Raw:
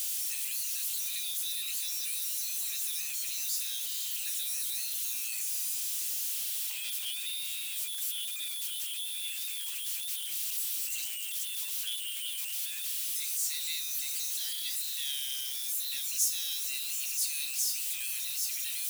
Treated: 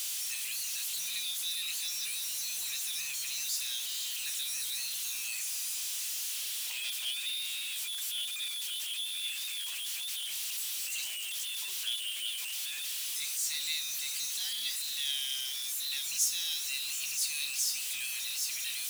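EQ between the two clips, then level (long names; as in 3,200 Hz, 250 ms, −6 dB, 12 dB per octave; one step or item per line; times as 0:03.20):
high-shelf EQ 9,100 Hz −11 dB
+4.0 dB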